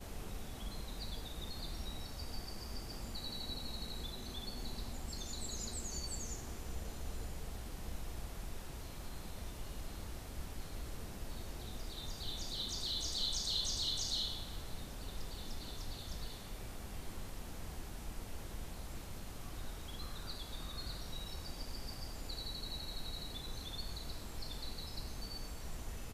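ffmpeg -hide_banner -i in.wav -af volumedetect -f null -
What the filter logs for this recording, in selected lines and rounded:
mean_volume: -42.1 dB
max_volume: -24.2 dB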